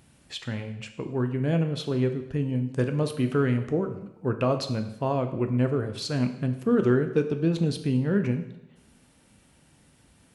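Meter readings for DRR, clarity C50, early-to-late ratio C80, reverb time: 6.5 dB, 10.0 dB, 12.5 dB, 0.90 s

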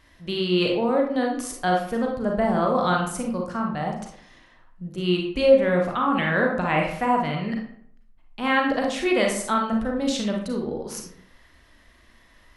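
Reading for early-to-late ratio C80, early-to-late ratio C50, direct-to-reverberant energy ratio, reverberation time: 8.5 dB, 4.0 dB, 0.0 dB, 0.65 s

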